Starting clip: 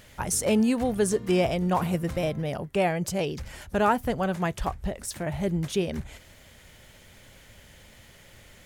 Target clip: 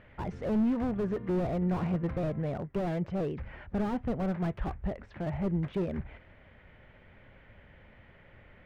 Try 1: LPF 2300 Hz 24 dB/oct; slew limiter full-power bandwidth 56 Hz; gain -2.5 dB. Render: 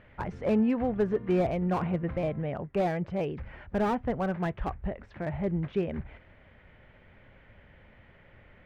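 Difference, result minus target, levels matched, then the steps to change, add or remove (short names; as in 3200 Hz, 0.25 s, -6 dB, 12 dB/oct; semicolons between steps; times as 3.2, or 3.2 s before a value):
slew limiter: distortion -9 dB
change: slew limiter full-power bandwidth 20 Hz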